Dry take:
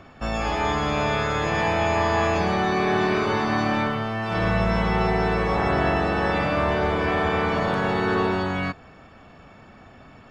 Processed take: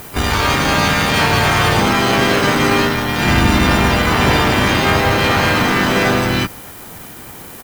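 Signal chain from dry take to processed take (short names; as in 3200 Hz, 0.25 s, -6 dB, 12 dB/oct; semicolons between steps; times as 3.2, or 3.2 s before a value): dynamic EQ 510 Hz, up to -7 dB, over -38 dBFS, Q 1.1; added noise violet -44 dBFS; harmoniser -12 st -5 dB, -4 st 0 dB, +5 st -2 dB; added harmonics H 6 -21 dB, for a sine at -10 dBFS; speed mistake 33 rpm record played at 45 rpm; gain +6 dB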